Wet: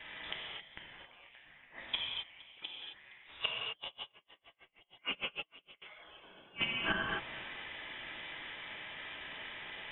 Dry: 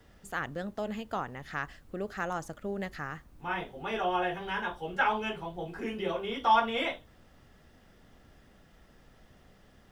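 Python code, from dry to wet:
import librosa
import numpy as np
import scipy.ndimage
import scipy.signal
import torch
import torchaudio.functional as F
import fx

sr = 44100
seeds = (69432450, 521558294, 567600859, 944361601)

y = fx.env_lowpass(x, sr, base_hz=1900.0, full_db=-30.5)
y = fx.highpass(y, sr, hz=1300.0, slope=6)
y = fx.high_shelf(y, sr, hz=2000.0, db=10.5)
y = fx.over_compress(y, sr, threshold_db=-39.0, ratio=-1.0)
y = 10.0 ** (-26.0 / 20.0) * (np.abs((y / 10.0 ** (-26.0 / 20.0) + 3.0) % 4.0 - 2.0) - 1.0)
y = fx.gate_flip(y, sr, shuts_db=-32.0, range_db=-35)
y = y + 10.0 ** (-21.5 / 20.0) * np.pad(y, (int(466 * sr / 1000.0), 0))[:len(y)]
y = fx.rev_gated(y, sr, seeds[0], gate_ms=290, shape='flat', drr_db=-2.5)
y = fx.freq_invert(y, sr, carrier_hz=3700)
y = fx.tremolo_db(y, sr, hz=6.5, depth_db=33, at=(3.71, 5.82))
y = F.gain(torch.from_numpy(y), 11.0).numpy()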